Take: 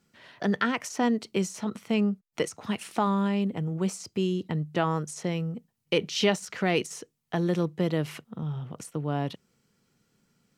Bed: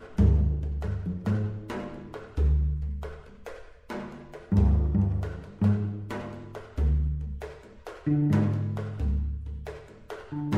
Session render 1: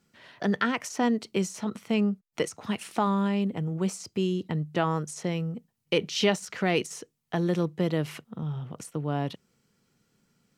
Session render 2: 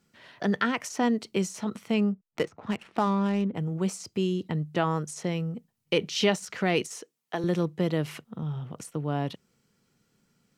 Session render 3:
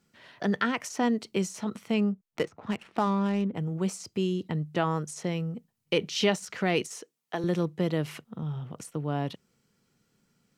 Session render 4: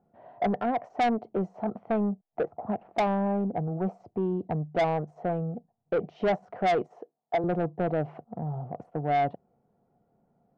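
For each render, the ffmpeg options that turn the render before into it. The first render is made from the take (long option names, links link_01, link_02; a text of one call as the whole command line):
ffmpeg -i in.wav -af anull out.wav
ffmpeg -i in.wav -filter_complex "[0:a]asettb=1/sr,asplit=3[link_01][link_02][link_03];[link_01]atrim=end=2.124[link_04];[link_02]atrim=start=2.12:end=3.55,asetpts=PTS-STARTPTS,afade=type=in:duration=0.004:curve=qsin,afade=type=out:start_time=1.426:duration=0.004:curve=qsin,adynamicsmooth=sensitivity=6:basefreq=1300[link_05];[link_03]atrim=start=3.546[link_06];[link_04][link_05]acrossfade=duration=0.004:curve1=hsin:curve2=qsin[link_07];[link_07][link_06]acrossfade=duration=0.004:curve1=qsin:curve2=hsin,asettb=1/sr,asplit=3[link_08][link_09][link_10];[link_08]atrim=end=6.884[link_11];[link_09]atrim=start=6.88:end=7.44,asetpts=PTS-STARTPTS,afade=type=in:duration=0.004:curve=qsin,afade=type=out:start_time=0.556:duration=0.004:curve=qsin,highpass=310[link_12];[link_10]atrim=start=7.436[link_13];[link_11][link_12]acrossfade=duration=0.004:curve1=hsin:curve2=qsin[link_14];[link_14][link_13]acrossfade=duration=0.004:curve1=qsin:curve2=hsin" out.wav
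ffmpeg -i in.wav -af "volume=-1dB" out.wav
ffmpeg -i in.wav -af "lowpass=frequency=720:width_type=q:width=7.9,asoftclip=type=tanh:threshold=-20.5dB" out.wav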